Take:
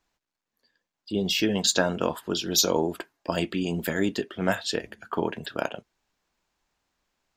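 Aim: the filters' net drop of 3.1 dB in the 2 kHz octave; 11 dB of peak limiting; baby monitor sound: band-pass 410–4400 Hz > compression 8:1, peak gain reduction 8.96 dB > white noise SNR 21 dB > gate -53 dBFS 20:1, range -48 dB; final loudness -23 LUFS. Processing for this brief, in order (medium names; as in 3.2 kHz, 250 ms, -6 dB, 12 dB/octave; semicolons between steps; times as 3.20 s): peaking EQ 2 kHz -4 dB; peak limiter -20 dBFS; band-pass 410–4400 Hz; compression 8:1, threshold -37 dBFS; white noise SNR 21 dB; gate -53 dBFS 20:1, range -48 dB; trim +19 dB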